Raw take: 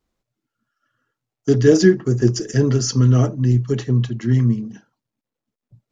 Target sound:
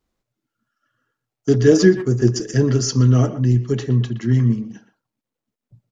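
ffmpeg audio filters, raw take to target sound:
-filter_complex "[0:a]asplit=2[s0][s1];[s1]adelay=120,highpass=300,lowpass=3400,asoftclip=type=hard:threshold=0.355,volume=0.251[s2];[s0][s2]amix=inputs=2:normalize=0"

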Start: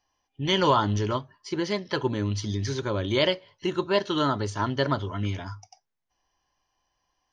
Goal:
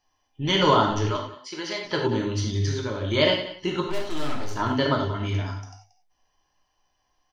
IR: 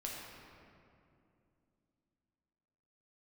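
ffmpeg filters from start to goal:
-filter_complex "[0:a]asettb=1/sr,asplit=3[s0][s1][s2];[s0]atrim=end=1.084[s3];[s1]atrim=start=1.08:end=1.85,asetpts=PTS-STARTPTS,afade=t=in:d=0.004:c=qsin,afade=t=out:st=0.766:d=0.004:c=qsin,highpass=f=940:p=1[s4];[s2]atrim=start=1.846[s5];[s3][s4]acrossfade=d=0.004:c1=hsin:c2=qsin[s6];[s6][s5]acrossfade=d=0.004:c1=qsin:c2=hsin,asettb=1/sr,asplit=3[s7][s8][s9];[s7]atrim=end=2.654[s10];[s8]atrim=start=2.65:end=3.12,asetpts=PTS-STARTPTS,afade=t=in:d=0.004:c=qsin,afade=t=out:st=0.466:d=0.004:c=qsin,acompressor=threshold=0.0355:ratio=4[s11];[s9]atrim=start=3.116[s12];[s10][s11]acrossfade=d=0.004:c1=hsin:c2=qsin[s13];[s13][s12]acrossfade=d=0.004:c1=qsin:c2=hsin,asettb=1/sr,asplit=3[s14][s15][s16];[s14]atrim=end=3.854[s17];[s15]atrim=start=3.85:end=4.56,asetpts=PTS-STARTPTS,afade=t=in:d=0.004:c=qsin,afade=t=out:st=0.706:d=0.004:c=qsin,aeval=exprs='(tanh(39.8*val(0)+0.7)-tanh(0.7))/39.8':c=same[s18];[s16]atrim=start=4.556[s19];[s17][s18]acrossfade=d=0.004:c1=hsin:c2=qsin[s20];[s20][s19]acrossfade=d=0.004:c1=qsin:c2=hsin,aecho=1:1:181:0.178[s21];[1:a]atrim=start_sample=2205,afade=t=out:st=0.16:d=0.01,atrim=end_sample=7497[s22];[s21][s22]afir=irnorm=-1:irlink=0,volume=1.78"

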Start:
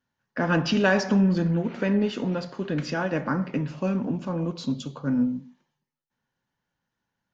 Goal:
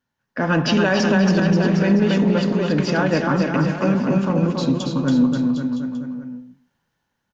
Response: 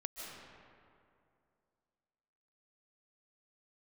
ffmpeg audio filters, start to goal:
-af "dynaudnorm=f=130:g=7:m=1.88,aecho=1:1:280|532|758.8|962.9|1147:0.631|0.398|0.251|0.158|0.1,alimiter=limit=0.316:level=0:latency=1:release=51,volume=1.19"

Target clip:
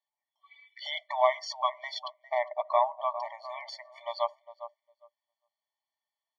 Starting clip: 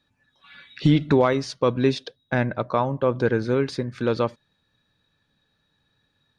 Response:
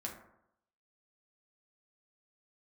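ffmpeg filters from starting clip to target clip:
-filter_complex "[0:a]asplit=2[s0][s1];[s1]adelay=405,lowpass=f=3100:p=1,volume=0.251,asplit=2[s2][s3];[s3]adelay=405,lowpass=f=3100:p=1,volume=0.22,asplit=2[s4][s5];[s5]adelay=405,lowpass=f=3100:p=1,volume=0.22[s6];[s0][s2][s4][s6]amix=inputs=4:normalize=0,afftdn=nr=14:nf=-41,afftfilt=real='re*eq(mod(floor(b*sr/1024/590),2),1)':imag='im*eq(mod(floor(b*sr/1024/590),2),1)':win_size=1024:overlap=0.75"

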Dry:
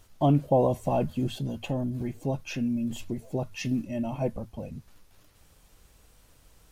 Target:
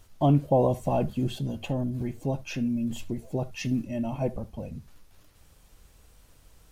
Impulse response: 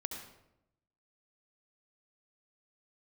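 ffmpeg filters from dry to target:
-filter_complex "[0:a]asplit=2[s0][s1];[1:a]atrim=start_sample=2205,atrim=end_sample=3528,lowshelf=f=170:g=10[s2];[s1][s2]afir=irnorm=-1:irlink=0,volume=0.316[s3];[s0][s3]amix=inputs=2:normalize=0,volume=0.794"

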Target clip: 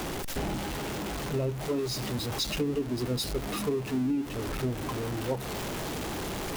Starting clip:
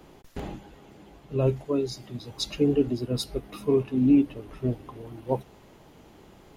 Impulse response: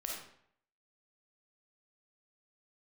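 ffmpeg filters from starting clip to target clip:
-af "aeval=exprs='val(0)+0.5*0.0422*sgn(val(0))':c=same,acompressor=threshold=0.0562:ratio=6,volume=0.841"

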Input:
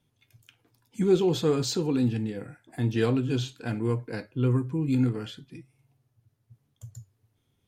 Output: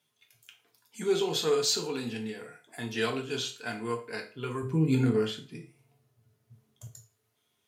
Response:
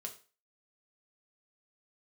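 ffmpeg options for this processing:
-filter_complex "[0:a]asetnsamples=n=441:p=0,asendcmd='4.63 highpass f 220;6.87 highpass f 930',highpass=f=1300:p=1[s0];[1:a]atrim=start_sample=2205[s1];[s0][s1]afir=irnorm=-1:irlink=0,volume=2.51"

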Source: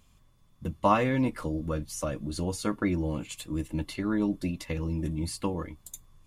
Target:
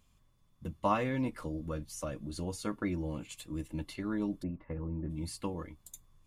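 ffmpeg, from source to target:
-filter_complex "[0:a]asplit=3[s0][s1][s2];[s0]afade=t=out:st=4.42:d=0.02[s3];[s1]lowpass=f=1600:w=0.5412,lowpass=f=1600:w=1.3066,afade=t=in:st=4.42:d=0.02,afade=t=out:st=5.09:d=0.02[s4];[s2]afade=t=in:st=5.09:d=0.02[s5];[s3][s4][s5]amix=inputs=3:normalize=0,volume=0.473"

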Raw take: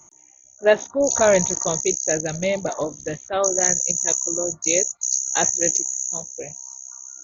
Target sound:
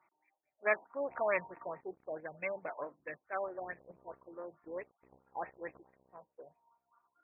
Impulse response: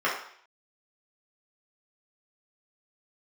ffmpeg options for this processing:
-af "aeval=exprs='(tanh(2.82*val(0)+0.55)-tanh(0.55))/2.82':c=same,aderivative,afftfilt=real='re*lt(b*sr/1024,990*pow(2700/990,0.5+0.5*sin(2*PI*4.6*pts/sr)))':imag='im*lt(b*sr/1024,990*pow(2700/990,0.5+0.5*sin(2*PI*4.6*pts/sr)))':win_size=1024:overlap=0.75,volume=2.37"

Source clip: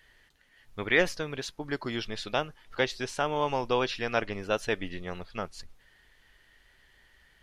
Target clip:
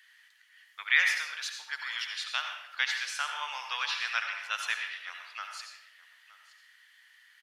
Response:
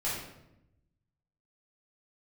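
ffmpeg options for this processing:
-filter_complex "[0:a]highpass=f=1300:w=0.5412,highpass=f=1300:w=1.3066,aecho=1:1:919:0.106,asplit=2[s0][s1];[1:a]atrim=start_sample=2205,lowshelf=f=210:g=-10.5,adelay=69[s2];[s1][s2]afir=irnorm=-1:irlink=0,volume=0.335[s3];[s0][s3]amix=inputs=2:normalize=0,volume=1.26"

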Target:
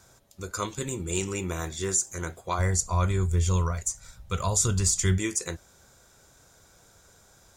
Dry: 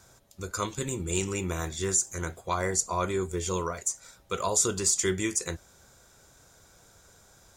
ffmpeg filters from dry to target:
-filter_complex "[0:a]asplit=3[s0][s1][s2];[s0]afade=t=out:st=2.58:d=0.02[s3];[s1]asubboost=boost=11:cutoff=110,afade=t=in:st=2.58:d=0.02,afade=t=out:st=5.17:d=0.02[s4];[s2]afade=t=in:st=5.17:d=0.02[s5];[s3][s4][s5]amix=inputs=3:normalize=0"

